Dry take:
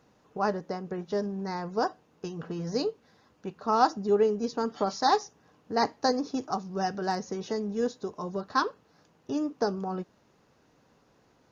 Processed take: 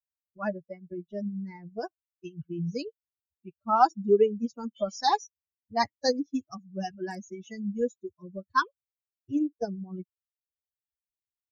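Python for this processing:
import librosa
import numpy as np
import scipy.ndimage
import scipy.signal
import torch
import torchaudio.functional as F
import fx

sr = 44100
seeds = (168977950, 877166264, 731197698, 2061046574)

y = fx.bin_expand(x, sr, power=3.0)
y = y * librosa.db_to_amplitude(6.0)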